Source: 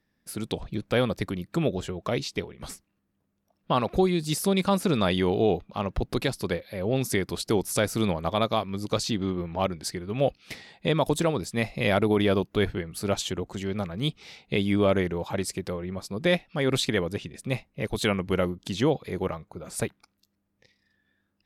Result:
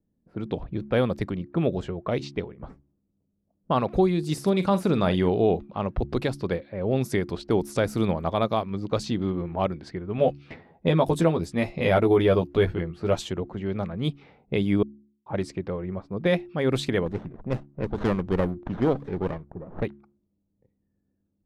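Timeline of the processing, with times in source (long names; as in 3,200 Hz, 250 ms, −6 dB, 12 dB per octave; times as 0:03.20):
0:04.33–0:05.29: double-tracking delay 44 ms −13.5 dB
0:10.17–0:13.25: double-tracking delay 12 ms −4.5 dB
0:14.83–0:15.26: silence
0:17.06–0:19.83: windowed peak hold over 17 samples
whole clip: low-pass that shuts in the quiet parts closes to 440 Hz, open at −23 dBFS; high-shelf EQ 2,300 Hz −10.5 dB; hum removal 70.57 Hz, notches 5; level +2 dB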